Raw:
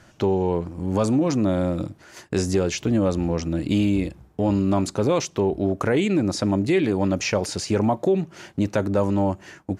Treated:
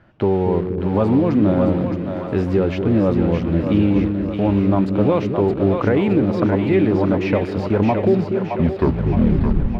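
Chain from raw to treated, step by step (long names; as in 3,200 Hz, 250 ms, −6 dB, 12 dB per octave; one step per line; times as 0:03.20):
turntable brake at the end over 1.40 s
in parallel at −4 dB: bit reduction 5 bits
on the sum: high-frequency loss of the air 440 metres
echo with a time of its own for lows and highs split 450 Hz, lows 241 ms, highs 618 ms, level −5 dB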